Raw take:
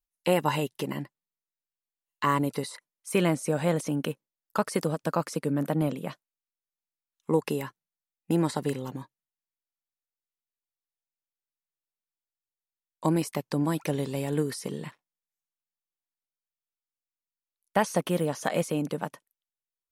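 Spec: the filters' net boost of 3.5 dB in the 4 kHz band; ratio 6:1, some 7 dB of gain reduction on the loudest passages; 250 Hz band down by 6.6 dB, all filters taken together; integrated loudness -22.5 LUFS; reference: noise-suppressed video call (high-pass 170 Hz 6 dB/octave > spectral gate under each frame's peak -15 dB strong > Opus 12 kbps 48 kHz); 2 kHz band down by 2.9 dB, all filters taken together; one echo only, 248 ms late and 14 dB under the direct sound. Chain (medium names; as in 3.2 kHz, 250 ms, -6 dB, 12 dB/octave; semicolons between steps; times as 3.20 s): peaking EQ 250 Hz -7.5 dB; peaking EQ 2 kHz -5.5 dB; peaking EQ 4 kHz +7 dB; compression 6:1, threshold -29 dBFS; high-pass 170 Hz 6 dB/octave; delay 248 ms -14 dB; spectral gate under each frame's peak -15 dB strong; trim +15 dB; Opus 12 kbps 48 kHz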